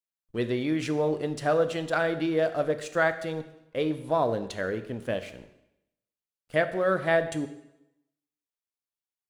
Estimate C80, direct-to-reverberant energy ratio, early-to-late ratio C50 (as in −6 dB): 15.0 dB, 10.0 dB, 13.0 dB